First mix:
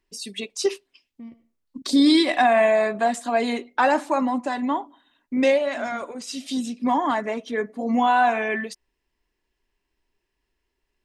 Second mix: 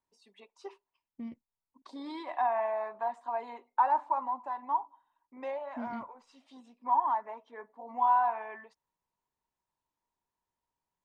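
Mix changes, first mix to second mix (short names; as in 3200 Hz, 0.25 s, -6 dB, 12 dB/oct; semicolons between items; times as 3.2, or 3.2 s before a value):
first voice: add band-pass 940 Hz, Q 7; reverb: off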